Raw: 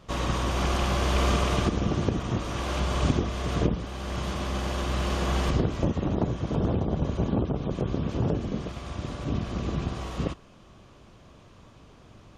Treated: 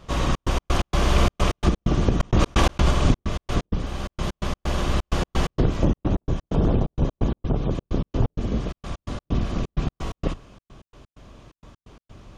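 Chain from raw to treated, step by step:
sub-octave generator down 2 octaves, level +1 dB
gate pattern "xxx.x.x." 129 BPM −60 dB
0:02.20–0:02.91: envelope flattener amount 100%
level +3.5 dB

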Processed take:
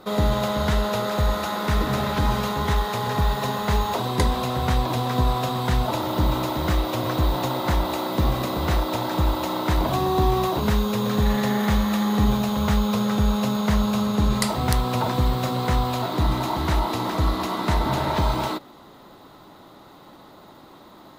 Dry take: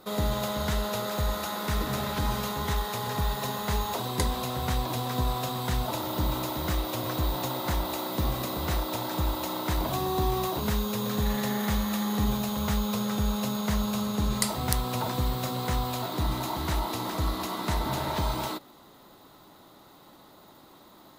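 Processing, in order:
high-shelf EQ 5,600 Hz −10.5 dB
level +7 dB

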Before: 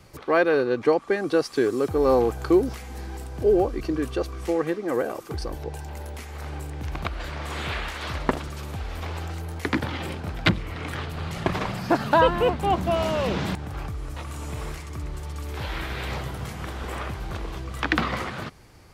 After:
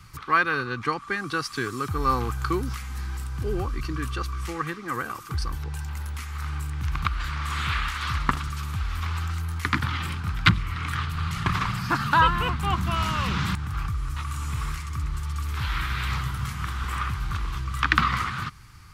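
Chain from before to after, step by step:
drawn EQ curve 130 Hz 0 dB, 620 Hz −23 dB, 1,200 Hz +4 dB, 1,700 Hz −2 dB
level +4.5 dB

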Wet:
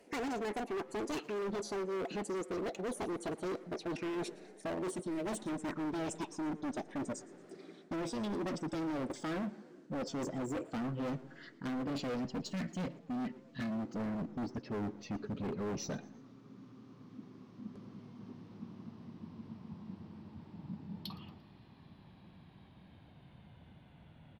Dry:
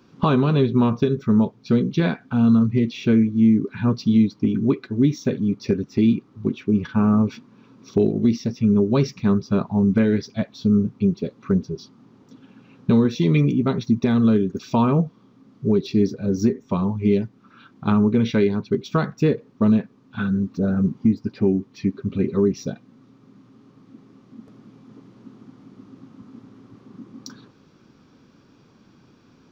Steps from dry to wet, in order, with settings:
gliding playback speed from 183% → 59%
gain on a spectral selection 0:12.18–0:13.81, 300–1,700 Hz −9 dB
reversed playback
downward compressor 10 to 1, threshold −23 dBFS, peak gain reduction 11.5 dB
reversed playback
hard clipping −31 dBFS, distortion −6 dB
gain on a spectral selection 0:04.93–0:05.26, 630–1,800 Hz −7 dB
echo with shifted repeats 115 ms, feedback 44%, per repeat +140 Hz, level −21.5 dB
on a send at −24 dB: convolution reverb, pre-delay 76 ms
on the sum: level −4 dB

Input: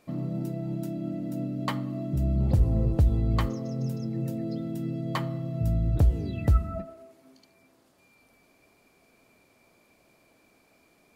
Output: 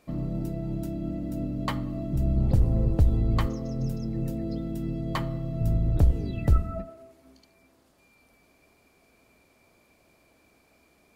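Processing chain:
sub-octave generator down 2 octaves, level −5 dB

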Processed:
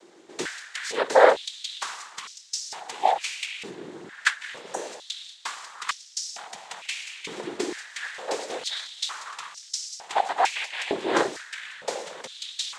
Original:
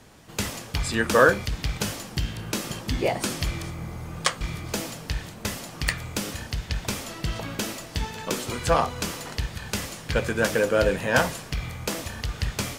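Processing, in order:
cochlear-implant simulation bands 6
healed spectral selection 0:04.65–0:04.87, 1,900–5,600 Hz
high-pass on a step sequencer 2.2 Hz 350–5,400 Hz
level −3.5 dB

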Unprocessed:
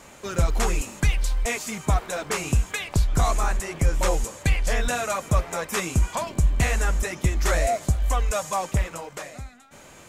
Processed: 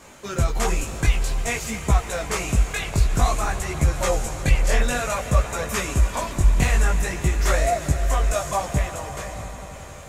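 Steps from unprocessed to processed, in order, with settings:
echo that builds up and dies away 88 ms, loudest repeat 5, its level −17.5 dB
multi-voice chorus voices 2, 0.53 Hz, delay 18 ms, depth 4.3 ms
level +4 dB

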